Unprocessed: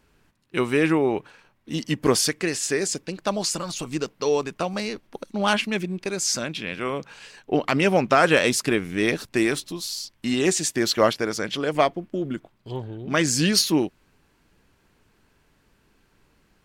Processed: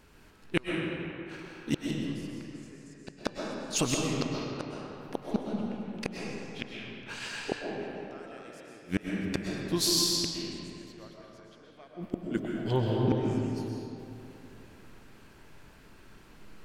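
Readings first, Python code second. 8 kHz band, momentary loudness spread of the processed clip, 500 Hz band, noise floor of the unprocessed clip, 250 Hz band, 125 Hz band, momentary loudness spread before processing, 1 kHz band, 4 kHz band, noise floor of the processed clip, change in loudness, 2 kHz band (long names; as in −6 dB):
−9.5 dB, 20 LU, −12.5 dB, −64 dBFS, −8.0 dB, −4.0 dB, 13 LU, −14.5 dB, −7.5 dB, −54 dBFS, −9.0 dB, −14.0 dB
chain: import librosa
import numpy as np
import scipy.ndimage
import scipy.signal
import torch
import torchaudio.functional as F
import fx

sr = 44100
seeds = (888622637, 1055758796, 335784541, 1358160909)

y = fx.gate_flip(x, sr, shuts_db=-19.0, range_db=-38)
y = fx.rev_freeverb(y, sr, rt60_s=2.9, hf_ratio=0.6, predelay_ms=85, drr_db=-2.0)
y = y * librosa.db_to_amplitude(4.0)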